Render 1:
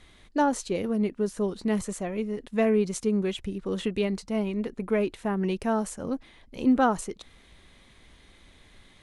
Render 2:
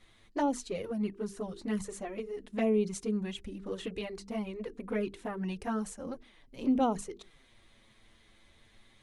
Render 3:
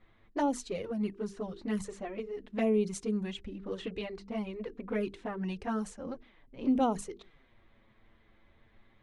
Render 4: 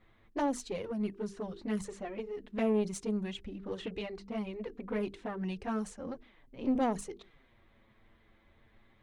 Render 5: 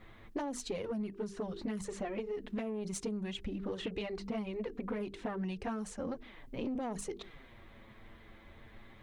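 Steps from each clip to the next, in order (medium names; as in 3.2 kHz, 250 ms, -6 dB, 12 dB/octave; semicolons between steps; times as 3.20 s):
hum notches 50/100/150/200/250/300/350/400/450 Hz; touch-sensitive flanger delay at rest 9.8 ms, full sweep at -19 dBFS; trim -3.5 dB
level-controlled noise filter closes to 1.7 kHz, open at -28 dBFS
single-diode clipper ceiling -28 dBFS
peak limiter -27 dBFS, peak gain reduction 8 dB; compression 6:1, threshold -45 dBFS, peak gain reduction 13.5 dB; trim +9.5 dB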